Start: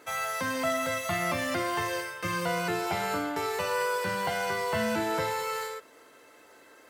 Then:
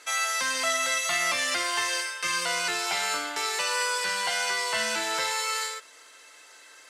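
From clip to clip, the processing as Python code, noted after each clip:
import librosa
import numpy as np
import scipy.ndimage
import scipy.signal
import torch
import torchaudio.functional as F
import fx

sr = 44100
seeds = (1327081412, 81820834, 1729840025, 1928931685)

y = fx.weighting(x, sr, curve='ITU-R 468')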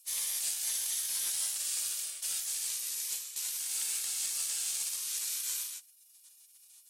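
y = fx.spec_gate(x, sr, threshold_db=-20, keep='weak')
y = scipy.signal.lfilter([1.0, -0.97], [1.0], y)
y = fx.cheby_harmonics(y, sr, harmonics=(8,), levels_db=(-38,), full_scale_db=-18.5)
y = F.gain(torch.from_numpy(y), 5.5).numpy()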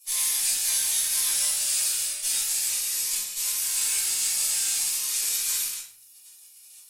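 y = fx.room_shoebox(x, sr, seeds[0], volume_m3=60.0, walls='mixed', distance_m=2.2)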